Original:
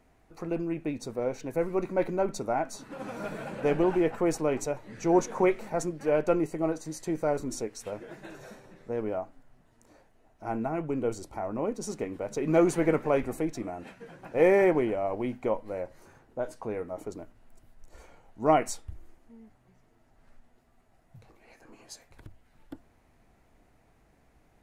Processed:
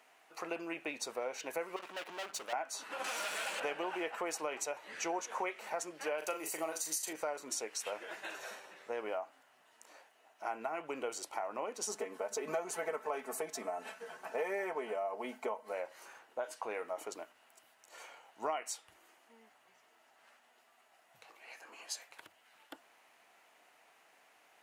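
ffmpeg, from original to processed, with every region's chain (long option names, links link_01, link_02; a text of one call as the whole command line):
ffmpeg -i in.wav -filter_complex "[0:a]asettb=1/sr,asplit=3[link_01][link_02][link_03];[link_01]atrim=end=1.764[link_04];[link_02]atrim=start=1.76:end=2.53,asetpts=PTS-STARTPTS,afade=type=in:duration=0.004:curve=qsin,afade=type=out:start_time=0.766:duration=0.004:curve=qsin,aeval=exprs='sgn(val(0))*max(abs(val(0))-0.00282,0)':channel_layout=same,aeval=exprs='(tanh(89.1*val(0)+0.55)-tanh(0.55))/89.1':channel_layout=same[link_05];[link_03]atrim=start=2.526[link_06];[link_04][link_05]acrossfade=duration=0.004:curve1=hsin:curve2=qsin[link_07];[link_07][link_06]acrossfade=duration=0.004:curve1=qsin:curve2=hsin,asettb=1/sr,asplit=3[link_08][link_09][link_10];[link_08]atrim=end=3.044[link_11];[link_09]atrim=start=3.04:end=3.6,asetpts=PTS-STARTPTS,afade=type=in:duration=0.004:curve=qsin,afade=type=out:start_time=0.556:duration=0.004:curve=qsin,equalizer=frequency=7800:width_type=o:width=2.8:gain=13.5,asoftclip=type=hard:threshold=-35dB[link_12];[link_10]atrim=start=3.596[link_13];[link_11][link_12]acrossfade=duration=0.004:curve1=hsin:curve2=qsin[link_14];[link_14][link_13]acrossfade=duration=0.004:curve1=qsin:curve2=hsin,asettb=1/sr,asplit=3[link_15][link_16][link_17];[link_15]atrim=end=6.184[link_18];[link_16]atrim=start=6.18:end=7.13,asetpts=PTS-STARTPTS,afade=type=in:duration=0.004:curve=qsin,afade=type=out:start_time=0.946:duration=0.004:curve=qsin,highpass=57,aemphasis=mode=production:type=75fm,asplit=2[link_19][link_20];[link_20]adelay=38,volume=-8dB[link_21];[link_19][link_21]amix=inputs=2:normalize=0,atrim=end_sample=41895[link_22];[link_17]atrim=start=7.126[link_23];[link_18][link_22]acrossfade=duration=0.004:curve1=hsin:curve2=qsin[link_24];[link_24][link_23]acrossfade=duration=0.004:curve1=qsin:curve2=hsin,asettb=1/sr,asplit=3[link_25][link_26][link_27];[link_25]atrim=end=11.874[link_28];[link_26]atrim=start=11.87:end=15.73,asetpts=PTS-STARTPTS,afade=type=in:duration=0.004:curve=qsin,afade=type=out:start_time=3.856:duration=0.004:curve=qsin,equalizer=frequency=2700:width_type=o:width=1.3:gain=-9.5,aecho=1:1:4.6:0.82,atrim=end_sample=170226[link_29];[link_27]atrim=start=15.726[link_30];[link_28][link_29]acrossfade=duration=0.004:curve1=hsin:curve2=qsin[link_31];[link_31][link_30]acrossfade=duration=0.004:curve1=qsin:curve2=hsin,highpass=820,equalizer=frequency=2900:width_type=o:width=0.37:gain=6,acompressor=threshold=-40dB:ratio=6,volume=5.5dB" out.wav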